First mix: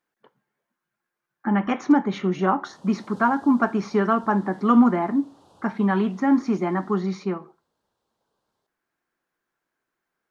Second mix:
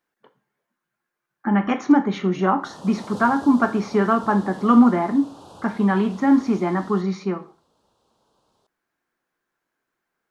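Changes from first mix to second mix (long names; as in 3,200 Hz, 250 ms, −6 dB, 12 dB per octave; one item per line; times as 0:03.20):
speech: send +9.5 dB
background +11.5 dB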